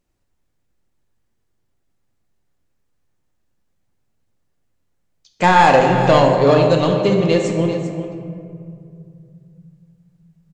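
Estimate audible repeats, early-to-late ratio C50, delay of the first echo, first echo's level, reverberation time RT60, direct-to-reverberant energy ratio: 1, 3.5 dB, 0.394 s, -12.0 dB, 2.3 s, 1.5 dB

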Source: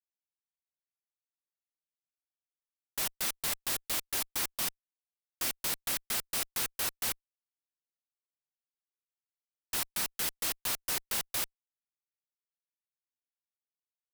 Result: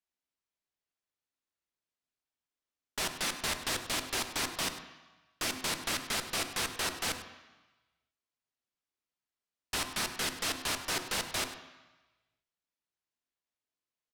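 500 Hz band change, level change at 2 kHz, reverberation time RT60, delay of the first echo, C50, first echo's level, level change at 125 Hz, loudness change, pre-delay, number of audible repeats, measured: +5.5 dB, +4.5 dB, 1.1 s, 0.1 s, 8.5 dB, -15.0 dB, +5.5 dB, -1.0 dB, 3 ms, 1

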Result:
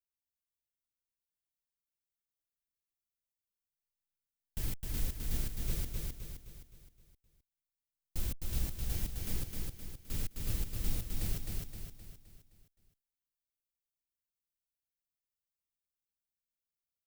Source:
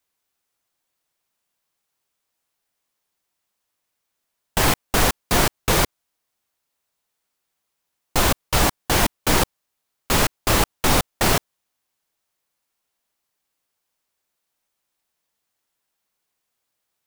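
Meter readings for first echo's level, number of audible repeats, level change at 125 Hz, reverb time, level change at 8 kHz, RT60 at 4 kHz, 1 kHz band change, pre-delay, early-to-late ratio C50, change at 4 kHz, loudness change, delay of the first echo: -3.0 dB, 5, -13.0 dB, none, -20.5 dB, none, -35.0 dB, none, none, -24.0 dB, -19.0 dB, 0.26 s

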